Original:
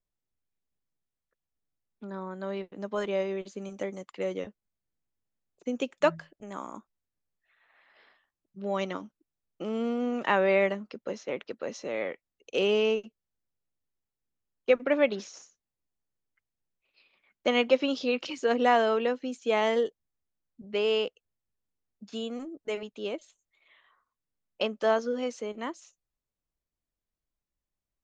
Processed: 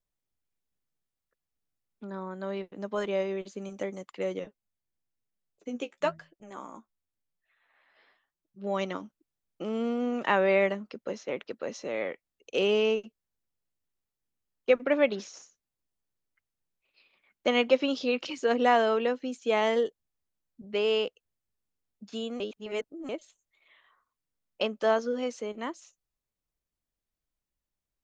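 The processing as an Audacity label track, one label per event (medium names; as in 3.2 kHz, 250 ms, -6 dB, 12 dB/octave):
4.390000	8.670000	flange 1 Hz, delay 4.9 ms, depth 9.6 ms, regen +28%
22.400000	23.090000	reverse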